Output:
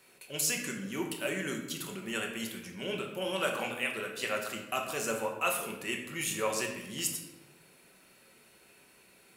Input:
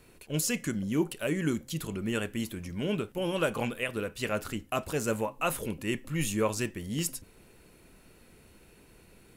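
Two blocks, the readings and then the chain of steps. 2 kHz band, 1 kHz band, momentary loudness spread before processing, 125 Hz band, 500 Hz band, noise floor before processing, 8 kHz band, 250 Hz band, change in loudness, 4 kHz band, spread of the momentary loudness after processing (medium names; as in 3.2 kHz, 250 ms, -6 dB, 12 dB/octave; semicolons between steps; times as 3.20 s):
+1.5 dB, 0.0 dB, 5 LU, -11.0 dB, -3.0 dB, -58 dBFS, +1.5 dB, -7.5 dB, -2.0 dB, +2.0 dB, 7 LU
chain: high-pass 900 Hz 6 dB/octave; simulated room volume 380 m³, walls mixed, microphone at 1.1 m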